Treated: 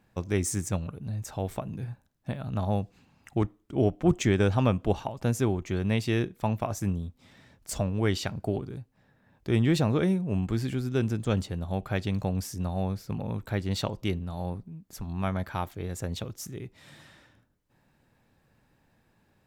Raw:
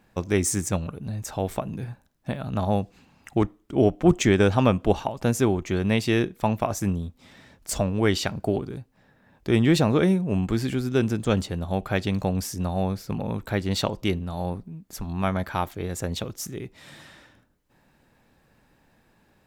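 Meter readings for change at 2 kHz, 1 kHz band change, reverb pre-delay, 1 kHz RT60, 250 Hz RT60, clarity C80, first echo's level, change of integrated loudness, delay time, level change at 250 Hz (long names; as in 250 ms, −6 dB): −6.0 dB, −6.0 dB, no reverb audible, no reverb audible, no reverb audible, no reverb audible, no echo audible, −4.5 dB, no echo audible, −5.0 dB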